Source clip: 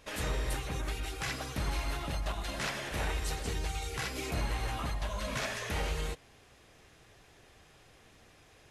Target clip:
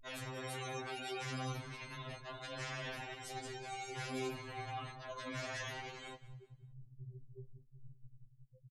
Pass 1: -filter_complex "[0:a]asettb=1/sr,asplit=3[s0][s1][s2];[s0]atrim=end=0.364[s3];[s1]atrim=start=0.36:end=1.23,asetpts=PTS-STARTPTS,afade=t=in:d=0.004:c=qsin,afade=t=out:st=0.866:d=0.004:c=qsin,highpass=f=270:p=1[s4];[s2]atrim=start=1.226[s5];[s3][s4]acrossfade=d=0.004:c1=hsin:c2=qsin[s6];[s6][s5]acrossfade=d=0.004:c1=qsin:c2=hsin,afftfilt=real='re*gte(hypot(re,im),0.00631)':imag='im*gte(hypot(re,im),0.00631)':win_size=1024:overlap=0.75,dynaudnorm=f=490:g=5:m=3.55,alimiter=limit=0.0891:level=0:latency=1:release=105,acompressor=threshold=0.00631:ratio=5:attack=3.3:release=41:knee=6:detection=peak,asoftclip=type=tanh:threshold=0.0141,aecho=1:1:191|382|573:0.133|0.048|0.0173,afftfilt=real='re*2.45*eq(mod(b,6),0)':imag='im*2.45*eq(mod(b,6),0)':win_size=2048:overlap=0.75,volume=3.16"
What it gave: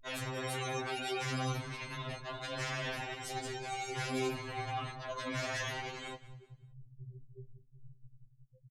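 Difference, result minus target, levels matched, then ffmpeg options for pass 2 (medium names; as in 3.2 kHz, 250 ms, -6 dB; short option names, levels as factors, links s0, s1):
compression: peak gain reduction -6.5 dB
-filter_complex "[0:a]asettb=1/sr,asplit=3[s0][s1][s2];[s0]atrim=end=0.364[s3];[s1]atrim=start=0.36:end=1.23,asetpts=PTS-STARTPTS,afade=t=in:d=0.004:c=qsin,afade=t=out:st=0.866:d=0.004:c=qsin,highpass=f=270:p=1[s4];[s2]atrim=start=1.226[s5];[s3][s4]acrossfade=d=0.004:c1=hsin:c2=qsin[s6];[s6][s5]acrossfade=d=0.004:c1=qsin:c2=hsin,afftfilt=real='re*gte(hypot(re,im),0.00631)':imag='im*gte(hypot(re,im),0.00631)':win_size=1024:overlap=0.75,dynaudnorm=f=490:g=5:m=3.55,alimiter=limit=0.0891:level=0:latency=1:release=105,acompressor=threshold=0.00251:ratio=5:attack=3.3:release=41:knee=6:detection=peak,asoftclip=type=tanh:threshold=0.0141,aecho=1:1:191|382|573:0.133|0.048|0.0173,afftfilt=real='re*2.45*eq(mod(b,6),0)':imag='im*2.45*eq(mod(b,6),0)':win_size=2048:overlap=0.75,volume=3.16"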